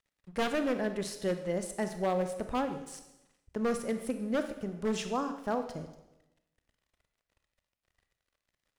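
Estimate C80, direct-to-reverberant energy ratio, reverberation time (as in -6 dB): 11.5 dB, 7.5 dB, 0.95 s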